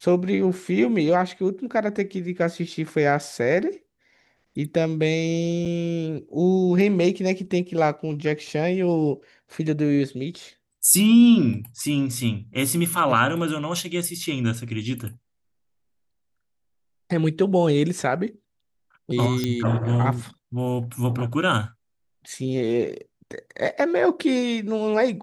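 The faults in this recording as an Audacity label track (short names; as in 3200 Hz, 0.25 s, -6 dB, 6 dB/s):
5.650000	5.660000	gap 6.2 ms
19.440000	19.440000	pop -11 dBFS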